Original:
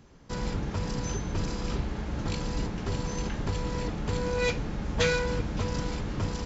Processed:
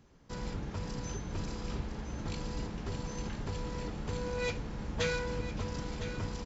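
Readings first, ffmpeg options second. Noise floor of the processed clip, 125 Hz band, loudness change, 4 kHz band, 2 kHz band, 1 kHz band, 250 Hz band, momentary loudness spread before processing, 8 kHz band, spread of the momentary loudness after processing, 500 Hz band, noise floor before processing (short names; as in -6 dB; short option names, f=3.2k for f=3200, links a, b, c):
-44 dBFS, -7.0 dB, -6.5 dB, -6.5 dB, -6.5 dB, -6.5 dB, -6.5 dB, 6 LU, n/a, 6 LU, -6.5 dB, -38 dBFS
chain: -filter_complex "[0:a]asplit=2[a][b];[b]aecho=0:1:1008:0.282[c];[a][c]amix=inputs=2:normalize=0,volume=-7dB"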